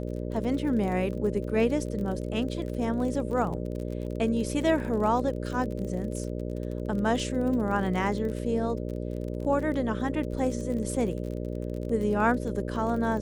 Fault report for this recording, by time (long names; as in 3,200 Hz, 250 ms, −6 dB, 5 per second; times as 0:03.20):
mains buzz 60 Hz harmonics 10 −33 dBFS
surface crackle 37 per second −34 dBFS